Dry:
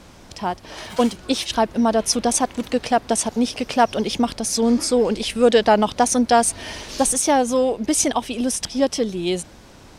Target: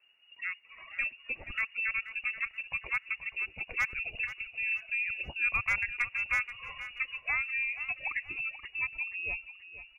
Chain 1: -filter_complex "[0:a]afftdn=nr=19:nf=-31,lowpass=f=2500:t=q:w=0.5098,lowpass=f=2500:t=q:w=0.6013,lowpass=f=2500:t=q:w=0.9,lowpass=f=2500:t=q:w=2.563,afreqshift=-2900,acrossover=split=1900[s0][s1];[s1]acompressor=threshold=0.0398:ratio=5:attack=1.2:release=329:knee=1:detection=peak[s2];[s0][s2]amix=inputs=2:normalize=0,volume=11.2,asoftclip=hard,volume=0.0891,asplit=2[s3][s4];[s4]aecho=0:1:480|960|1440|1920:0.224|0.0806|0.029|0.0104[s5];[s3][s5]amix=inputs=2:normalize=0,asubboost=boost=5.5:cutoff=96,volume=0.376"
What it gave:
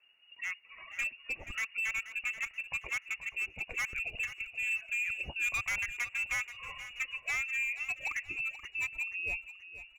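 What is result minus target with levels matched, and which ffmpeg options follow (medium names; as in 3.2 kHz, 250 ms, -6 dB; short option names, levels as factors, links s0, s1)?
overload inside the chain: distortion +18 dB
-filter_complex "[0:a]afftdn=nr=19:nf=-31,lowpass=f=2500:t=q:w=0.5098,lowpass=f=2500:t=q:w=0.6013,lowpass=f=2500:t=q:w=0.9,lowpass=f=2500:t=q:w=2.563,afreqshift=-2900,acrossover=split=1900[s0][s1];[s1]acompressor=threshold=0.0398:ratio=5:attack=1.2:release=329:knee=1:detection=peak[s2];[s0][s2]amix=inputs=2:normalize=0,volume=3.98,asoftclip=hard,volume=0.251,asplit=2[s3][s4];[s4]aecho=0:1:480|960|1440|1920:0.224|0.0806|0.029|0.0104[s5];[s3][s5]amix=inputs=2:normalize=0,asubboost=boost=5.5:cutoff=96,volume=0.376"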